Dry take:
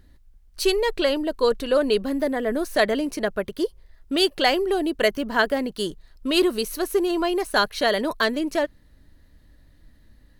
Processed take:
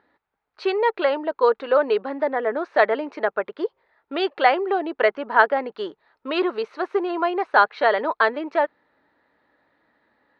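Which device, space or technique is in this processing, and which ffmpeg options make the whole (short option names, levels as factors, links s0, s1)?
phone earpiece: -af "highpass=450,equalizer=f=450:t=q:w=4:g=3,equalizer=f=860:t=q:w=4:g=9,equalizer=f=1300:t=q:w=4:g=6,equalizer=f=3000:t=q:w=4:g=-7,lowpass=f=3100:w=0.5412,lowpass=f=3100:w=1.3066,volume=1.19"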